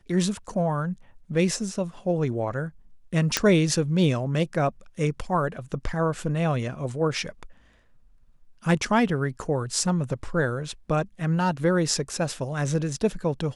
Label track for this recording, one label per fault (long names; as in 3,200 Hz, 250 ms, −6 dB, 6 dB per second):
3.370000	3.370000	click −3 dBFS